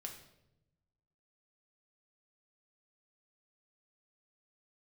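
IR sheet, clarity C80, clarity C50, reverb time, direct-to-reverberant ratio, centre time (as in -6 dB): 10.5 dB, 7.5 dB, 0.90 s, 1.5 dB, 22 ms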